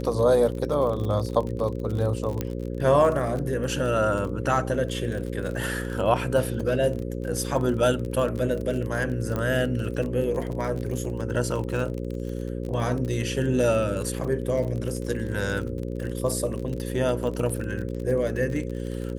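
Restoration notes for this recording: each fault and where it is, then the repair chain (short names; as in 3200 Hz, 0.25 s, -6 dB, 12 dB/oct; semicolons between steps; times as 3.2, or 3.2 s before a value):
buzz 60 Hz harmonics 9 -31 dBFS
crackle 32/s -30 dBFS
2.41 pop -13 dBFS
9.36 pop -16 dBFS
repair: de-click; de-hum 60 Hz, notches 9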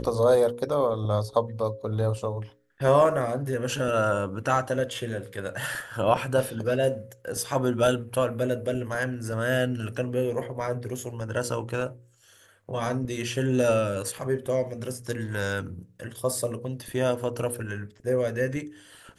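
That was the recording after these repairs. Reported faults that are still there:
none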